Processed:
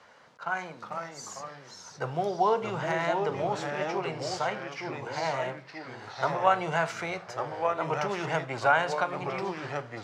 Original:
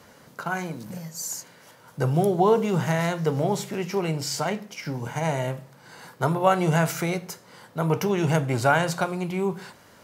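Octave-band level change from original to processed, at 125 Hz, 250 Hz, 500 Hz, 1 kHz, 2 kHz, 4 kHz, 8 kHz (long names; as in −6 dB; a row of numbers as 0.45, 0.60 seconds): −13.0, −11.5, −4.5, −1.0, −1.0, −4.0, −11.0 decibels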